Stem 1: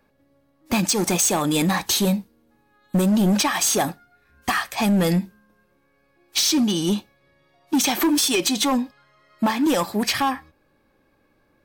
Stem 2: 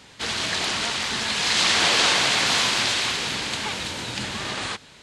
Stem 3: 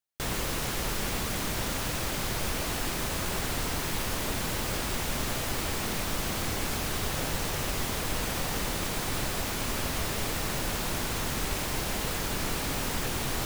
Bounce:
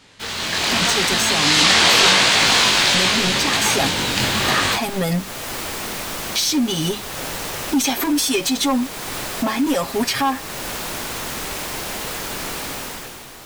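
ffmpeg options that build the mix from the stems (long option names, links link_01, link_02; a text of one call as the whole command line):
ffmpeg -i stem1.wav -i stem2.wav -i stem3.wav -filter_complex "[0:a]aecho=1:1:7.4:0.97,volume=-6.5dB[link_01];[1:a]flanger=delay=18:depth=5.2:speed=0.8,volume=1.5dB[link_02];[2:a]lowshelf=frequency=180:gain=-11.5,volume=-7dB[link_03];[link_01][link_03]amix=inputs=2:normalize=0,alimiter=limit=-24dB:level=0:latency=1:release=371,volume=0dB[link_04];[link_02][link_04]amix=inputs=2:normalize=0,dynaudnorm=framelen=100:gausssize=13:maxgain=12.5dB" out.wav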